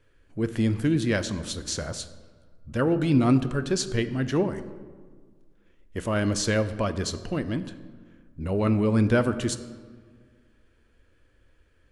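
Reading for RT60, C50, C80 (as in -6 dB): 1.7 s, 13.0 dB, 14.5 dB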